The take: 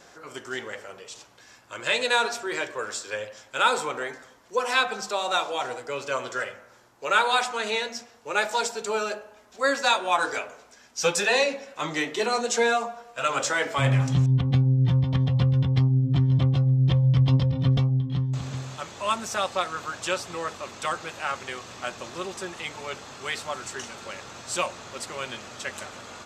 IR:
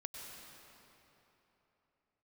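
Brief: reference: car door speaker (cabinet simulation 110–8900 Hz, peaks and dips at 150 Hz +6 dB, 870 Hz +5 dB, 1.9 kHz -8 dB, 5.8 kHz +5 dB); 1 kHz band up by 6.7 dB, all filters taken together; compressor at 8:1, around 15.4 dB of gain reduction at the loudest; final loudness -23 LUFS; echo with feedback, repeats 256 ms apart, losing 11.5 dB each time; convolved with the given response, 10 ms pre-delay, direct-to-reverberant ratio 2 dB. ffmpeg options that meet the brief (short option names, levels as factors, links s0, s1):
-filter_complex "[0:a]equalizer=f=1000:t=o:g=6,acompressor=threshold=0.0355:ratio=8,aecho=1:1:256|512|768:0.266|0.0718|0.0194,asplit=2[s0][s1];[1:a]atrim=start_sample=2205,adelay=10[s2];[s1][s2]afir=irnorm=-1:irlink=0,volume=1[s3];[s0][s3]amix=inputs=2:normalize=0,highpass=110,equalizer=f=150:t=q:w=4:g=6,equalizer=f=870:t=q:w=4:g=5,equalizer=f=1900:t=q:w=4:g=-8,equalizer=f=5800:t=q:w=4:g=5,lowpass=f=8900:w=0.5412,lowpass=f=8900:w=1.3066,volume=2.51"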